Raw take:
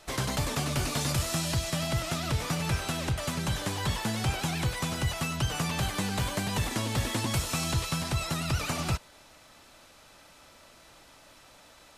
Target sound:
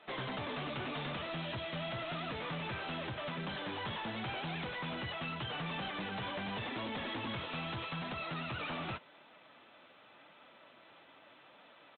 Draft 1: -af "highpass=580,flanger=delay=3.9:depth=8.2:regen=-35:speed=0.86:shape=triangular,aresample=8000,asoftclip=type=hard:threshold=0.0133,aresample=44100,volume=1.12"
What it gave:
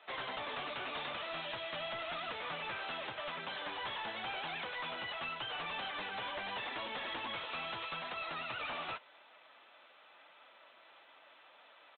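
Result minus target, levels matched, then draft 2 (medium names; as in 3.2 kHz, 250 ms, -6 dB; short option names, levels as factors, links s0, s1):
250 Hz band -10.5 dB
-af "highpass=200,flanger=delay=3.9:depth=8.2:regen=-35:speed=0.86:shape=triangular,aresample=8000,asoftclip=type=hard:threshold=0.0133,aresample=44100,volume=1.12"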